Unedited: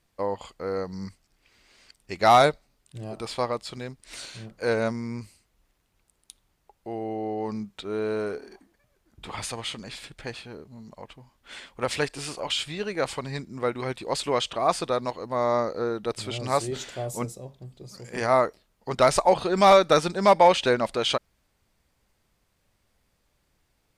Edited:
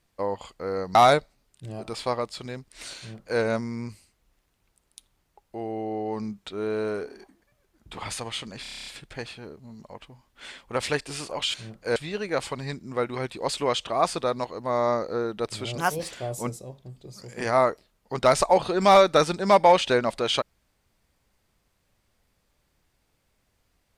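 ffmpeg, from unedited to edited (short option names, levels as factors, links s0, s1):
-filter_complex "[0:a]asplit=14[s0][s1][s2][s3][s4][s5][s6][s7][s8][s9][s10][s11][s12][s13];[s0]atrim=end=0.952[s14];[s1]atrim=start=2.268:end=9.972[s15];[s2]atrim=start=9.938:end=9.972[s16];[s3]atrim=start=9.938:end=9.972[s17];[s4]atrim=start=9.938:end=9.972[s18];[s5]atrim=start=9.938:end=9.972[s19];[s6]atrim=start=9.938:end=9.972[s20];[s7]atrim=start=9.938:end=9.972[s21];[s8]atrim=start=9.938:end=9.972[s22];[s9]atrim=start=9.938:end=12.622[s23];[s10]atrim=start=4.298:end=4.722[s24];[s11]atrim=start=12.618:end=16.444[s25];[s12]atrim=start=16.44:end=16.87,asetpts=PTS-STARTPTS,asetrate=57330,aresample=44100[s26];[s13]atrim=start=16.866[s27];[s14][s15]acrossfade=d=0.004:c1=hsin:c2=hsin[s28];[s28][s16]acrossfade=d=0.004:c1=hsin:c2=hsin[s29];[s29][s17]acrossfade=d=0.004:c1=hsin:c2=hsin[s30];[s30][s18]acrossfade=d=0.004:c1=hsin:c2=hsin[s31];[s31][s19]acrossfade=d=0.004:c1=hsin:c2=hsin[s32];[s32][s20]acrossfade=d=0.004:c1=hsin:c2=hsin[s33];[s33][s21]acrossfade=d=0.004:c1=hsin:c2=hsin[s34];[s34][s22]acrossfade=d=0.004:c1=hsin:c2=hsin[s35];[s35][s23]acrossfade=d=0.004:c1=hsin:c2=hsin[s36];[s36][s24]acrossfade=d=0.004:c1=hsin:c2=hsin[s37];[s37][s25]acrossfade=d=0.004:c1=hsin:c2=hsin[s38];[s38][s26]acrossfade=d=0.004:c1=hsin:c2=hsin[s39];[s39][s27]acrossfade=d=0.004:c1=hsin:c2=hsin"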